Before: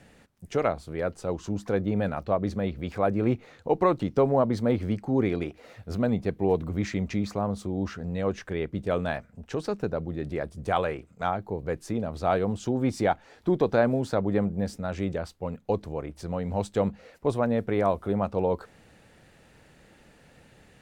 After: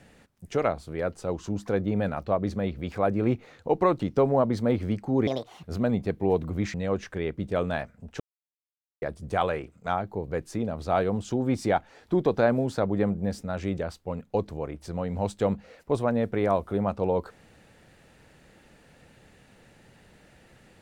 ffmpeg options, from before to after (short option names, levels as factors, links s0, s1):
-filter_complex "[0:a]asplit=6[s0][s1][s2][s3][s4][s5];[s0]atrim=end=5.274[s6];[s1]atrim=start=5.27:end=5.82,asetpts=PTS-STARTPTS,asetrate=67473,aresample=44100[s7];[s2]atrim=start=5.816:end=6.932[s8];[s3]atrim=start=8.088:end=9.55,asetpts=PTS-STARTPTS,afade=t=out:st=1.458:d=0.004:c=hsin[s9];[s4]atrim=start=9.55:end=10.37,asetpts=PTS-STARTPTS,volume=0[s10];[s5]atrim=start=10.37,asetpts=PTS-STARTPTS,afade=t=in:d=0.004:c=hsin[s11];[s6][s7]acrossfade=d=0.004:c1=hsin:c2=hsin[s12];[s12][s8]acrossfade=d=0.004:c1=hsin:c2=hsin[s13];[s9][s10][s11]concat=n=3:v=0:a=1[s14];[s13][s14]acrossfade=d=0.004:c1=hsin:c2=hsin"